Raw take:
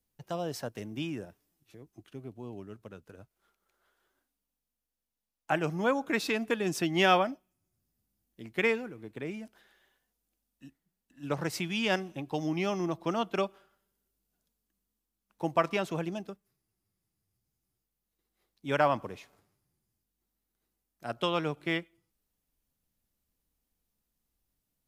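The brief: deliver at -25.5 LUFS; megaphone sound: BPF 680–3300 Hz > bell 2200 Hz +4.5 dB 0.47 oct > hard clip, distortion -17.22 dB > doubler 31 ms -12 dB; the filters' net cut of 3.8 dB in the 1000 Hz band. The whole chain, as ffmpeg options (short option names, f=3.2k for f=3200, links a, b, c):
-filter_complex "[0:a]highpass=680,lowpass=3.3k,equalizer=f=1k:t=o:g=-3.5,equalizer=f=2.2k:t=o:w=0.47:g=4.5,asoftclip=type=hard:threshold=-21dB,asplit=2[a][b];[b]adelay=31,volume=-12dB[c];[a][c]amix=inputs=2:normalize=0,volume=9.5dB"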